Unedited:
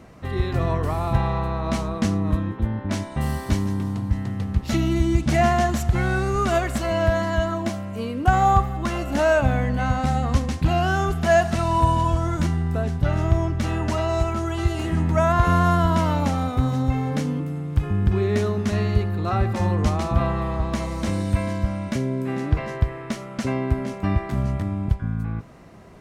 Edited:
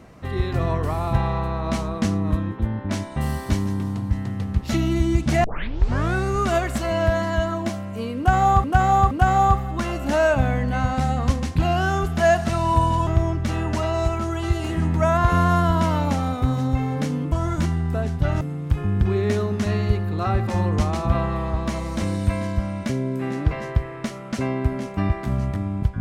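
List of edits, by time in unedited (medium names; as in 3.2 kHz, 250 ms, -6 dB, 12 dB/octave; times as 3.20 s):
5.44 s: tape start 0.70 s
8.17–8.64 s: loop, 3 plays
12.13–13.22 s: move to 17.47 s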